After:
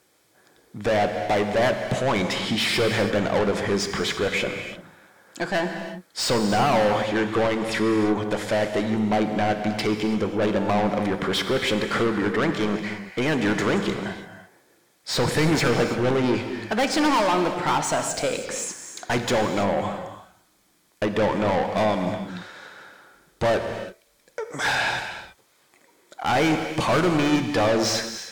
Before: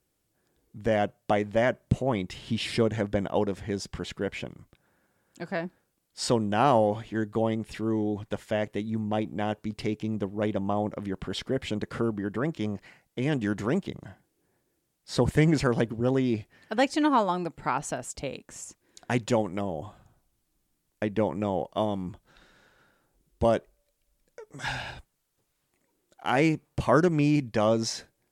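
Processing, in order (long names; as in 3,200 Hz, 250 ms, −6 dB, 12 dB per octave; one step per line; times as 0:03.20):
notch filter 2,800 Hz, Q 9.9
mid-hump overdrive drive 31 dB, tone 4,200 Hz, clips at −8.5 dBFS
reverb whose tail is shaped and stops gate 360 ms flat, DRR 5.5 dB
level −5.5 dB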